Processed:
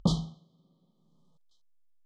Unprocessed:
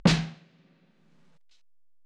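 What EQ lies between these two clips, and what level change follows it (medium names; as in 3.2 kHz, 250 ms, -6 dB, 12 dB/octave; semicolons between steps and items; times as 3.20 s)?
brick-wall FIR band-stop 1.3–3 kHz; peaking EQ 60 Hz +9 dB 2.2 oct; -7.5 dB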